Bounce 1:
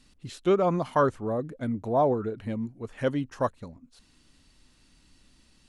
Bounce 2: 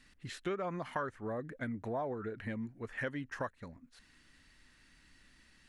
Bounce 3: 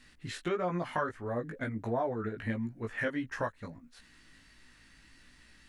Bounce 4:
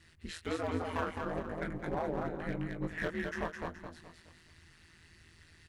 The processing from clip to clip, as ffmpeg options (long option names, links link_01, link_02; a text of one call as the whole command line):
ffmpeg -i in.wav -af "equalizer=frequency=1800:width=1.7:gain=14,acompressor=threshold=-30dB:ratio=4,volume=-5.5dB" out.wav
ffmpeg -i in.wav -af "flanger=delay=16.5:depth=2.6:speed=1.5,volume=7.5dB" out.wav
ffmpeg -i in.wav -af "aeval=exprs='clip(val(0),-1,0.0299)':channel_layout=same,aecho=1:1:211|422|633|844|1055:0.631|0.246|0.096|0.0374|0.0146,aeval=exprs='val(0)*sin(2*PI*82*n/s)':channel_layout=same" out.wav